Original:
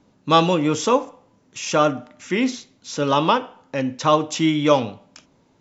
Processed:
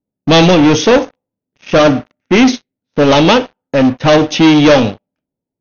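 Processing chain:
low-pass that shuts in the quiet parts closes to 1,000 Hz, open at −13 dBFS
parametric band 1,100 Hz −12.5 dB 0.59 octaves
leveller curve on the samples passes 5
linear-phase brick-wall low-pass 6,600 Hz
expander for the loud parts 1.5 to 1, over −34 dBFS
level +1.5 dB

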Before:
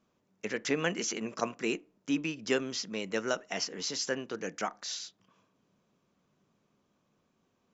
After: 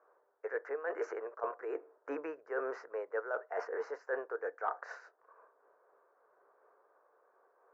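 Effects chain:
elliptic band-pass filter 440–1,600 Hz, stop band 40 dB
reversed playback
downward compressor 10 to 1, threshold −45 dBFS, peak gain reduction 19 dB
reversed playback
amplitude modulation by smooth noise, depth 60%
level +13.5 dB

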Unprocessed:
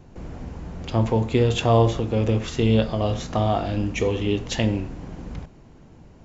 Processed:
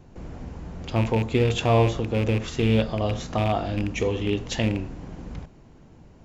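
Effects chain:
loose part that buzzes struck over −19 dBFS, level −20 dBFS
level −2 dB

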